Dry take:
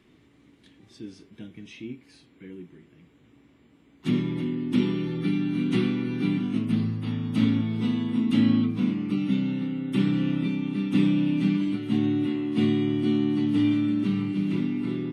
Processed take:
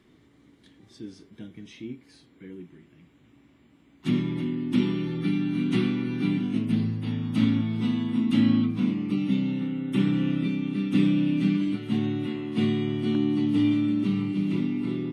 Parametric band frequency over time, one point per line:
parametric band −6.5 dB 0.27 octaves
2,600 Hz
from 0:02.60 450 Hz
from 0:06.31 1,200 Hz
from 0:07.22 450 Hz
from 0:08.85 1,500 Hz
from 0:09.60 4,600 Hz
from 0:10.31 910 Hz
from 0:11.75 300 Hz
from 0:13.15 1,600 Hz

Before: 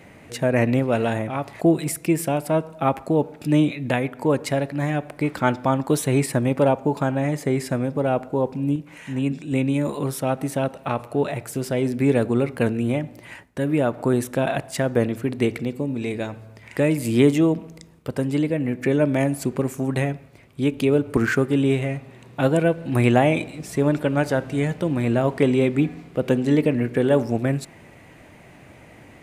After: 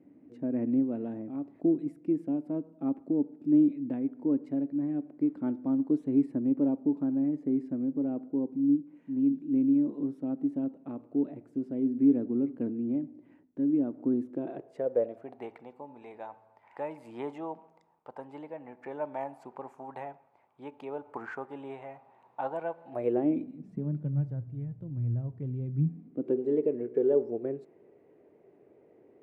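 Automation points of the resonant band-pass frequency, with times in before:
resonant band-pass, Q 5.9
0:14.25 280 Hz
0:15.50 860 Hz
0:22.85 860 Hz
0:23.25 310 Hz
0:24.44 110 Hz
0:25.66 110 Hz
0:26.40 410 Hz

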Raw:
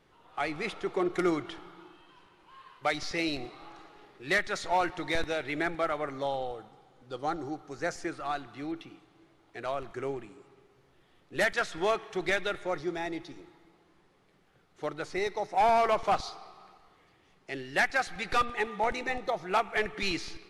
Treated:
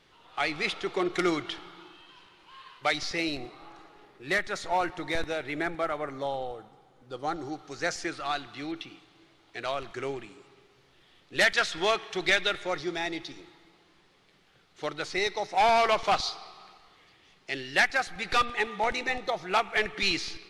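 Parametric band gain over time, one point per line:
parametric band 3,900 Hz 2.1 octaves
0:02.71 +10 dB
0:03.39 −0.5 dB
0:07.12 −0.5 dB
0:07.65 +10.5 dB
0:17.69 +10.5 dB
0:18.14 −1 dB
0:18.34 +7 dB

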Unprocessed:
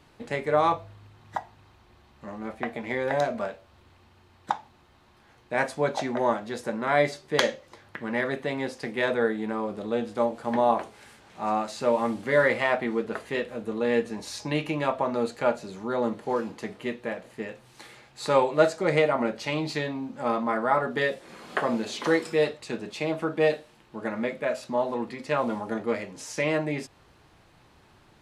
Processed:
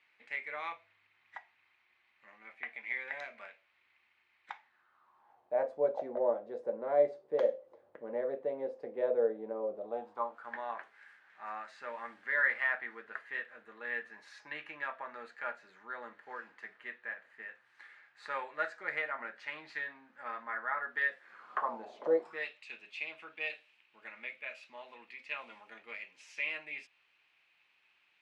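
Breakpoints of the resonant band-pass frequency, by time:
resonant band-pass, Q 4.5
0:04.55 2,200 Hz
0:05.68 530 Hz
0:09.72 530 Hz
0:10.56 1,700 Hz
0:21.25 1,700 Hz
0:22.16 520 Hz
0:22.47 2,500 Hz

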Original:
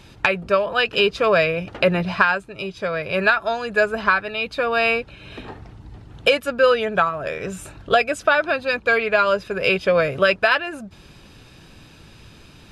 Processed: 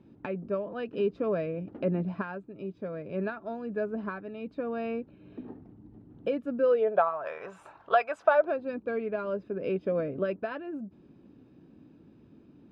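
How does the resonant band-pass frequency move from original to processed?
resonant band-pass, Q 2.5
0:06.56 260 Hz
0:07.19 950 Hz
0:08.20 950 Hz
0:08.70 270 Hz

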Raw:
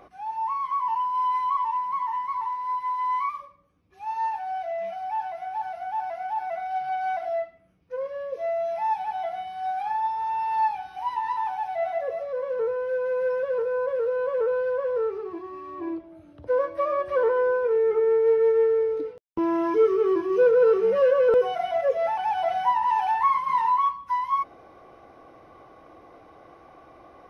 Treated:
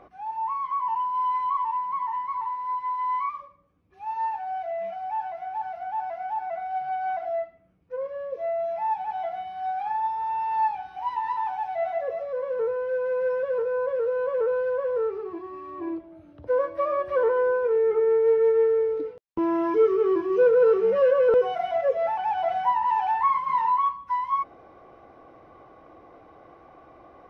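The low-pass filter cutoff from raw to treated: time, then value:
low-pass filter 6 dB per octave
2,200 Hz
from 0:06.36 1,700 Hz
from 0:09.10 2,500 Hz
from 0:11.03 3,500 Hz
from 0:21.90 2,500 Hz

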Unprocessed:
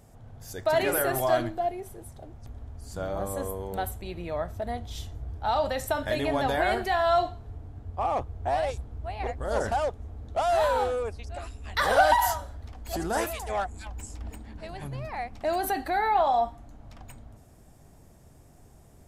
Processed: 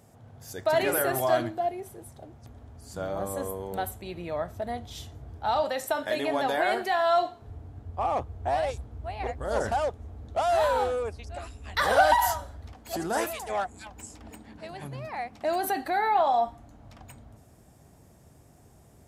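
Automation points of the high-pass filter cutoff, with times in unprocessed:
97 Hz
from 0:05.63 250 Hz
from 0:07.42 59 Hz
from 0:12.75 130 Hz
from 0:16.48 63 Hz

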